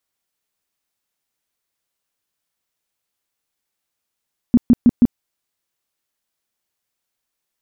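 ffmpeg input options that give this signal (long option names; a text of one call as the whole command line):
ffmpeg -f lavfi -i "aevalsrc='0.501*sin(2*PI*240*mod(t,0.16))*lt(mod(t,0.16),8/240)':duration=0.64:sample_rate=44100" out.wav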